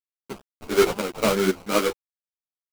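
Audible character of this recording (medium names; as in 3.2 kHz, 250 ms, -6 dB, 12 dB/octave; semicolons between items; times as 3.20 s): aliases and images of a low sample rate 1.8 kHz, jitter 20%; tremolo saw up 2 Hz, depth 75%; a quantiser's noise floor 8-bit, dither none; a shimmering, thickened sound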